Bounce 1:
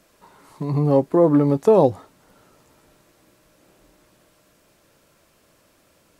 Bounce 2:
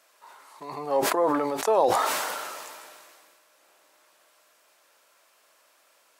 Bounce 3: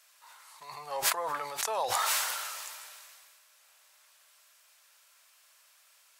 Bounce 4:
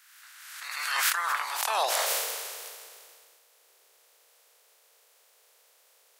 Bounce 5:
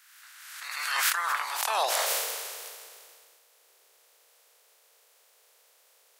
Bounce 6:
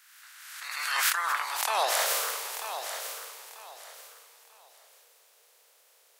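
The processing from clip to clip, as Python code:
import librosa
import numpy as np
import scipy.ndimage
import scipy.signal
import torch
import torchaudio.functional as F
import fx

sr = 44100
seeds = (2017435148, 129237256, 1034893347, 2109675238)

y1 = scipy.signal.sosfilt(scipy.signal.cheby1(2, 1.0, 840.0, 'highpass', fs=sr, output='sos'), x)
y1 = fx.sustainer(y1, sr, db_per_s=27.0)
y2 = fx.tone_stack(y1, sr, knobs='10-0-10')
y2 = y2 * librosa.db_to_amplitude(3.0)
y3 = fx.spec_clip(y2, sr, under_db=21)
y3 = fx.filter_sweep_highpass(y3, sr, from_hz=1500.0, to_hz=440.0, start_s=1.06, end_s=2.28, q=3.1)
y3 = fx.pre_swell(y3, sr, db_per_s=38.0)
y4 = y3
y5 = fx.echo_feedback(y4, sr, ms=941, feedback_pct=27, wet_db=-9.5)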